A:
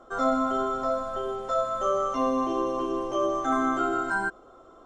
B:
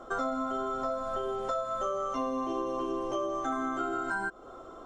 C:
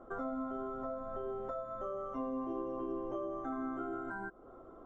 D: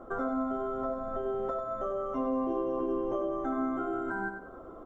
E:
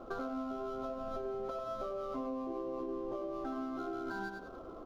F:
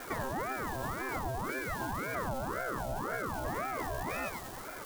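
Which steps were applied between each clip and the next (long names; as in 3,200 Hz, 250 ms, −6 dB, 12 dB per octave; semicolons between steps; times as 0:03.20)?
downward compressor 6 to 1, threshold −35 dBFS, peak gain reduction 14.5 dB; level +5 dB
drawn EQ curve 260 Hz 0 dB, 1,900 Hz −9 dB, 4,100 Hz −24 dB; level −3.5 dB
repeating echo 96 ms, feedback 37%, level −8 dB; level +6.5 dB
running median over 15 samples; downward compressor, threshold −35 dBFS, peak gain reduction 8 dB; level −1 dB
spike at every zero crossing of −37.5 dBFS; ring modulator whose carrier an LFO sweeps 660 Hz, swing 60%, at 1.9 Hz; level +6 dB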